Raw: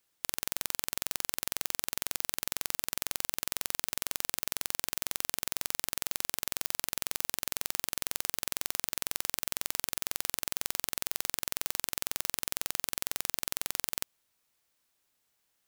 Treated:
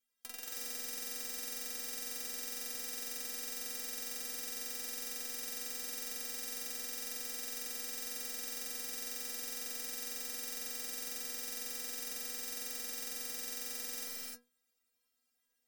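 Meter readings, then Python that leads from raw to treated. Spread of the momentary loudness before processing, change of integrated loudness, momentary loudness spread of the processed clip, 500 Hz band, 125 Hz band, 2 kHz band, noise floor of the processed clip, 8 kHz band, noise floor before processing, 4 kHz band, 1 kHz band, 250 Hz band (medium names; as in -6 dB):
1 LU, -6.0 dB, 0 LU, -4.5 dB, under -15 dB, -8.0 dB, -81 dBFS, -5.0 dB, -77 dBFS, -6.5 dB, -10.5 dB, -4.5 dB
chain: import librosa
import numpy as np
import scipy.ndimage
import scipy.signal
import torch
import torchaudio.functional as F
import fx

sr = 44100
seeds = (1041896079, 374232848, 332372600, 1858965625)

y = fx.peak_eq(x, sr, hz=890.0, db=-6.0, octaves=0.41)
y = fx.stiff_resonator(y, sr, f0_hz=240.0, decay_s=0.28, stiffness=0.008)
y = (np.mod(10.0 ** (34.0 / 20.0) * y + 1.0, 2.0) - 1.0) / 10.0 ** (34.0 / 20.0)
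y = fx.rev_gated(y, sr, seeds[0], gate_ms=330, shape='rising', drr_db=-3.0)
y = fx.fold_sine(y, sr, drive_db=3, ceiling_db=-30.5)
y = F.gain(torch.from_numpy(y), -3.5).numpy()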